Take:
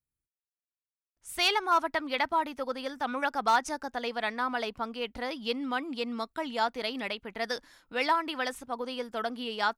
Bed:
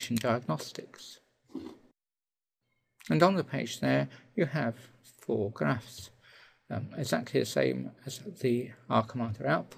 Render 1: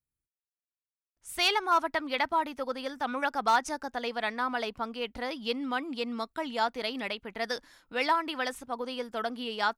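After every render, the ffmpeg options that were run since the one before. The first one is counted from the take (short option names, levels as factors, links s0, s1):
-af anull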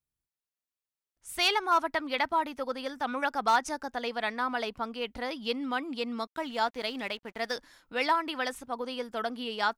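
-filter_complex "[0:a]asettb=1/sr,asplit=3[s0][s1][s2];[s0]atrim=end=6.274[s3];[s1]atrim=start=6.27:end=7.55,asetpts=PTS-STARTPTS,afade=t=in:d=0.004:c=qsin,afade=t=out:st=1.276:d=0.004:c=qsin,aeval=exprs='sgn(val(0))*max(abs(val(0))-0.002,0)':c=same[s4];[s2]atrim=start=7.546[s5];[s3][s4]acrossfade=d=0.004:c1=hsin:c2=qsin[s6];[s6][s5]acrossfade=d=0.004:c1=qsin:c2=hsin"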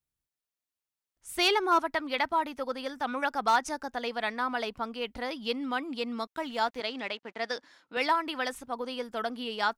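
-filter_complex "[0:a]asettb=1/sr,asplit=3[s0][s1][s2];[s0]atrim=end=1.354[s3];[s1]atrim=start=1.35:end=1.79,asetpts=PTS-STARTPTS,afade=t=in:d=0.004:c=qsin,afade=t=out:st=0.436:d=0.004:c=qsin,equalizer=f=360:t=o:w=0.59:g=8.5[s4];[s2]atrim=start=1.786[s5];[s3][s4]acrossfade=d=0.004:c1=hsin:c2=qsin[s6];[s6][s5]acrossfade=d=0.004:c1=qsin:c2=hsin,asettb=1/sr,asplit=3[s7][s8][s9];[s7]atrim=end=6.804[s10];[s8]atrim=start=6.8:end=7.97,asetpts=PTS-STARTPTS,afade=t=in:d=0.004:c=qsin,afade=t=out:st=1.166:d=0.004:c=qsin,highpass=210,lowpass=6200[s11];[s9]atrim=start=7.966[s12];[s10][s11]acrossfade=d=0.004:c1=hsin:c2=qsin[s13];[s13][s12]acrossfade=d=0.004:c1=qsin:c2=hsin"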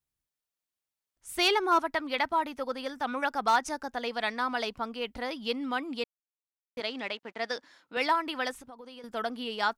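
-filter_complex "[0:a]asettb=1/sr,asplit=3[s0][s1][s2];[s0]atrim=end=4.134[s3];[s1]atrim=start=4.13:end=4.76,asetpts=PTS-STARTPTS,afade=t=in:d=0.004:c=qsin,afade=t=out:st=0.626:d=0.004:c=qsin,equalizer=f=5400:t=o:w=1.4:g=5[s4];[s2]atrim=start=4.756[s5];[s3][s4]acrossfade=d=0.004:c1=hsin:c2=qsin[s6];[s6][s5]acrossfade=d=0.004:c1=qsin:c2=hsin,asettb=1/sr,asplit=3[s7][s8][s9];[s7]atrim=end=8.514[s10];[s8]atrim=start=8.51:end=9.04,asetpts=PTS-STARTPTS,afade=t=in:d=0.004:c=qsin,afade=t=out:st=0.526:d=0.004:c=qsin,acompressor=threshold=0.00631:ratio=5:attack=3.2:release=140:knee=1:detection=peak[s11];[s9]atrim=start=9.036[s12];[s10][s11]acrossfade=d=0.004:c1=hsin:c2=qsin[s13];[s13][s12]acrossfade=d=0.004:c1=qsin:c2=hsin,asplit=3[s14][s15][s16];[s14]atrim=end=6.04,asetpts=PTS-STARTPTS,afade=t=out:st=6.036:d=0.004:c=hsin[s17];[s15]atrim=start=6.04:end=6.77,asetpts=PTS-STARTPTS,volume=0[s18];[s16]atrim=start=6.77,asetpts=PTS-STARTPTS,afade=t=in:d=0.004:c=hsin[s19];[s17][s18][s19]concat=n=3:v=0:a=1"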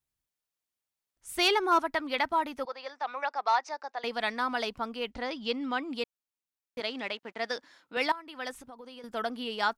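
-filter_complex "[0:a]asettb=1/sr,asplit=3[s0][s1][s2];[s0]atrim=end=2.654[s3];[s1]atrim=start=2.65:end=4.04,asetpts=PTS-STARTPTS,afade=t=in:d=0.004:c=qsin,afade=t=out:st=1.386:d=0.004:c=qsin,highpass=f=470:w=0.5412,highpass=f=470:w=1.3066,equalizer=f=490:t=q:w=4:g=-5,equalizer=f=1500:t=q:w=4:g=-6,equalizer=f=3200:t=q:w=4:g=-8,lowpass=f=5100:w=0.5412,lowpass=f=5100:w=1.3066[s4];[s2]atrim=start=4.036[s5];[s3][s4]acrossfade=d=0.004:c1=hsin:c2=qsin[s6];[s6][s5]acrossfade=d=0.004:c1=qsin:c2=hsin,asettb=1/sr,asplit=3[s7][s8][s9];[s7]atrim=end=5.114[s10];[s8]atrim=start=5.11:end=5.91,asetpts=PTS-STARTPTS,afade=t=in:d=0.004:c=qsin,afade=t=out:st=0.796:d=0.004:c=qsin,lowpass=f=7800:w=0.5412,lowpass=f=7800:w=1.3066[s11];[s9]atrim=start=5.906[s12];[s10][s11]acrossfade=d=0.004:c1=hsin:c2=qsin[s13];[s13][s12]acrossfade=d=0.004:c1=qsin:c2=hsin,asplit=2[s14][s15];[s14]atrim=end=8.12,asetpts=PTS-STARTPTS,afade=t=out:st=8.116:d=0.004:c=hsin:silence=0.16788[s16];[s15]atrim=start=8.12,asetpts=PTS-STARTPTS,afade=t=in:d=0.48:c=qua:silence=0.16788[s17];[s16][s17]concat=n=2:v=0:a=1"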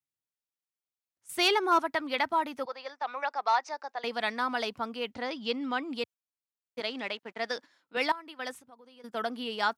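-af "agate=range=0.355:threshold=0.00631:ratio=16:detection=peak,highpass=f=87:w=0.5412,highpass=f=87:w=1.3066"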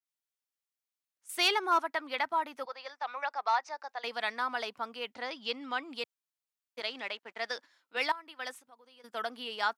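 -af "highpass=f=810:p=1,adynamicequalizer=threshold=0.00708:dfrequency=2200:dqfactor=0.7:tfrequency=2200:tqfactor=0.7:attack=5:release=100:ratio=0.375:range=3:mode=cutabove:tftype=highshelf"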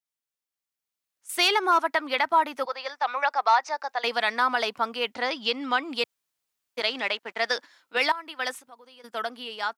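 -af "dynaudnorm=f=490:g=5:m=3.35,alimiter=limit=0.282:level=0:latency=1:release=93"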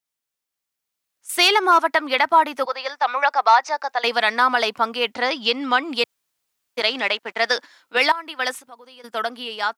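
-af "volume=2"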